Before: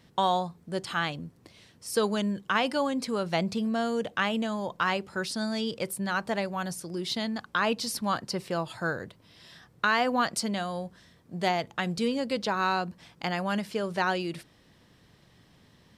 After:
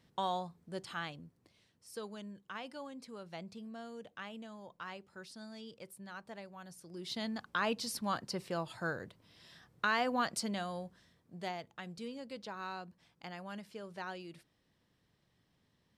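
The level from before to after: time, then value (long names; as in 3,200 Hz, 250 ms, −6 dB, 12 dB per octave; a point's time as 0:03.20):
0:00.79 −10 dB
0:02.08 −18.5 dB
0:06.67 −18.5 dB
0:07.25 −7 dB
0:10.70 −7 dB
0:11.76 −16 dB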